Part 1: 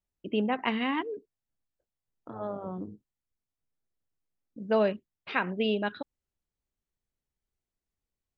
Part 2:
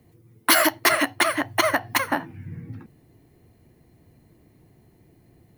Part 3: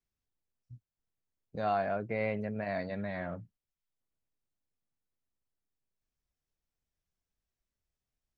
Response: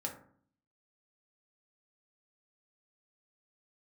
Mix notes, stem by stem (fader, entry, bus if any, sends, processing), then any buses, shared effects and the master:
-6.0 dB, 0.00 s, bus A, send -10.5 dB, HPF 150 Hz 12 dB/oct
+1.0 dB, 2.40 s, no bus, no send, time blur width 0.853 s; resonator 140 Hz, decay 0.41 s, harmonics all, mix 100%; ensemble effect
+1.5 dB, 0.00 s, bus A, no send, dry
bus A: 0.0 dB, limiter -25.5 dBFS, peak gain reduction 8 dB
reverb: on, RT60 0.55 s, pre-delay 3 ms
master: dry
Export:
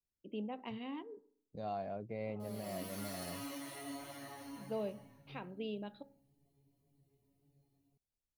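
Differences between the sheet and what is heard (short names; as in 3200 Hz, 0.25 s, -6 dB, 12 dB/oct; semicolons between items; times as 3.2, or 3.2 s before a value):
stem 1 -6.0 dB -> -14.0 dB; stem 3 +1.5 dB -> -7.0 dB; master: extra bell 1600 Hz -14 dB 1.1 oct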